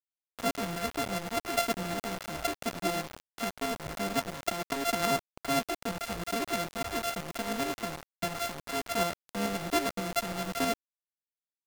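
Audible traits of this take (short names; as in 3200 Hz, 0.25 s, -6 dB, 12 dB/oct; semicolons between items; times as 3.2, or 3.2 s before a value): a buzz of ramps at a fixed pitch in blocks of 64 samples; tremolo saw up 9.3 Hz, depth 50%; a quantiser's noise floor 6-bit, dither none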